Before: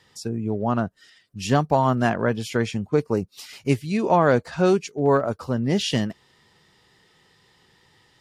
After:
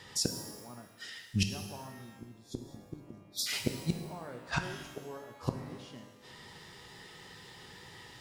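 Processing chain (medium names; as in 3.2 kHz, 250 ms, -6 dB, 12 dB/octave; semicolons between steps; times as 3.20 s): spectral selection erased 1.89–3.47 s, 380–3300 Hz; inverted gate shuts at -22 dBFS, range -35 dB; pitch-shifted reverb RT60 1.2 s, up +12 st, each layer -8 dB, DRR 5 dB; trim +6.5 dB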